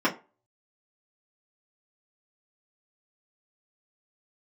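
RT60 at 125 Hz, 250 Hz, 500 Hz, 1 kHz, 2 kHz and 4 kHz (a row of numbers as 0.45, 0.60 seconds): 0.25, 0.25, 0.30, 0.30, 0.25, 0.20 seconds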